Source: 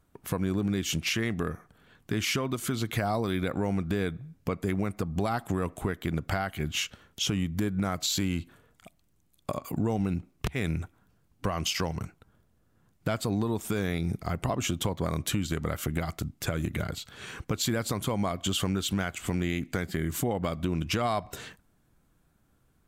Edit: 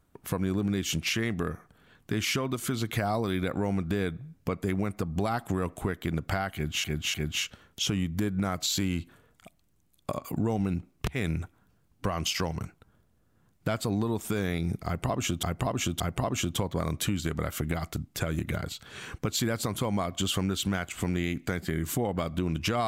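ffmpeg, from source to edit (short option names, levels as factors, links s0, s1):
-filter_complex "[0:a]asplit=5[s0][s1][s2][s3][s4];[s0]atrim=end=6.842[s5];[s1]atrim=start=6.538:end=6.842[s6];[s2]atrim=start=6.538:end=14.832[s7];[s3]atrim=start=14.258:end=14.832[s8];[s4]atrim=start=14.258[s9];[s5][s6]acrossfade=d=0.004:c1=hsin:c2=hsin[s10];[s10][s7]acrossfade=d=0.004:c1=hsin:c2=hsin[s11];[s11][s8]acrossfade=d=0.004:c1=hsin:c2=hsin[s12];[s12][s9]acrossfade=d=0.004:c1=hsin:c2=hsin"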